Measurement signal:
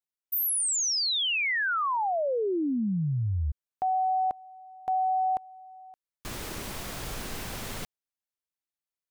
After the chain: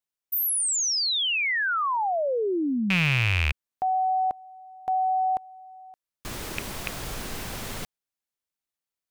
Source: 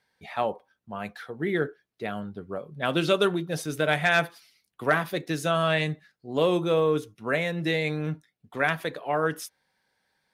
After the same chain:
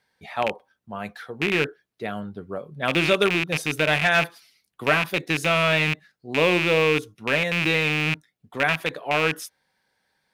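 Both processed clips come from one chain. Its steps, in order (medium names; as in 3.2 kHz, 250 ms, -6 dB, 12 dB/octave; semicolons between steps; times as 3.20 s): rattle on loud lows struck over -33 dBFS, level -14 dBFS; trim +2 dB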